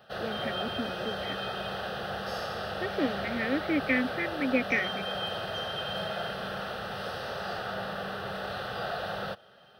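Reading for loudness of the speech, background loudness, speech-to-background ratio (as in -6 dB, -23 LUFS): -32.0 LUFS, -34.5 LUFS, 2.5 dB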